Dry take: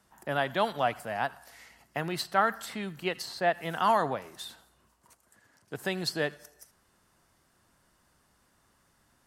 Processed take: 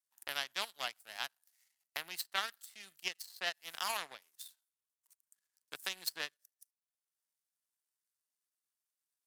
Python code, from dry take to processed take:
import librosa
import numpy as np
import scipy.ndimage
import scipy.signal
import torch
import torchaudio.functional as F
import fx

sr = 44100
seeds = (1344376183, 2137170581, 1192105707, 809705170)

y = fx.power_curve(x, sr, exponent=2.0)
y = F.preemphasis(torch.from_numpy(y), 0.97).numpy()
y = fx.band_squash(y, sr, depth_pct=70)
y = y * librosa.db_to_amplitude(11.5)